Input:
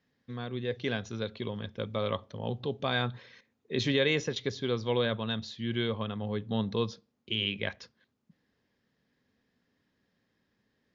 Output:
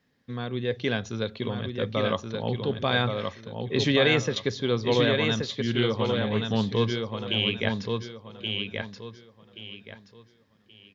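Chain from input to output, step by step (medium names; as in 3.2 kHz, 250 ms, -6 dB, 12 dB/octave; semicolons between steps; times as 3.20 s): feedback delay 1127 ms, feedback 27%, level -4.5 dB; 5.67–6.70 s: loudspeaker Doppler distortion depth 0.1 ms; trim +5 dB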